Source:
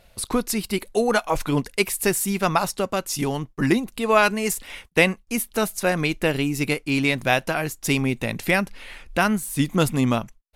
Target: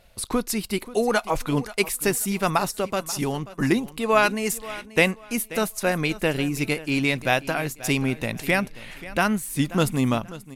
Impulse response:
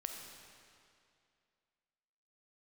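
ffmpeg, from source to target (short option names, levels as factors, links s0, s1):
-af "aecho=1:1:534|1068|1602:0.141|0.0381|0.0103,volume=0.841"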